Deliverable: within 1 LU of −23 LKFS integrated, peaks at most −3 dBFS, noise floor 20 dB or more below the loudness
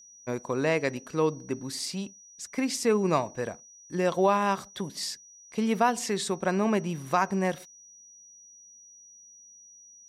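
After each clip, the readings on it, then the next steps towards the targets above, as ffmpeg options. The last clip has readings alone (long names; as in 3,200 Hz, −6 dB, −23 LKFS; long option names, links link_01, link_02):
interfering tone 5,800 Hz; level of the tone −50 dBFS; integrated loudness −28.5 LKFS; sample peak −11.5 dBFS; target loudness −23.0 LKFS
→ -af "bandreject=frequency=5800:width=30"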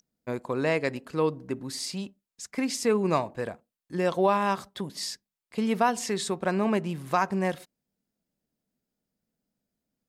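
interfering tone none found; integrated loudness −28.5 LKFS; sample peak −11.5 dBFS; target loudness −23.0 LKFS
→ -af "volume=5.5dB"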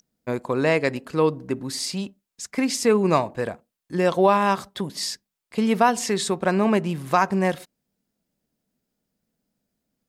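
integrated loudness −23.0 LKFS; sample peak −6.0 dBFS; background noise floor −84 dBFS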